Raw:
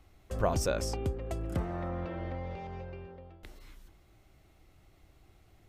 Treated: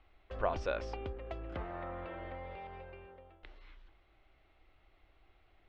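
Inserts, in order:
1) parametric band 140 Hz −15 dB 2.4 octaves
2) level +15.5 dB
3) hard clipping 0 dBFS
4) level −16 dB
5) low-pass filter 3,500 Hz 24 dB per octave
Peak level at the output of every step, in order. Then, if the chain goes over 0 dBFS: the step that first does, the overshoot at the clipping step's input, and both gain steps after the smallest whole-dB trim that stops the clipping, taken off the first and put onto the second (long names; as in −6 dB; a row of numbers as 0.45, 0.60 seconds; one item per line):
−17.5, −2.0, −2.0, −18.0, −18.0 dBFS
no step passes full scale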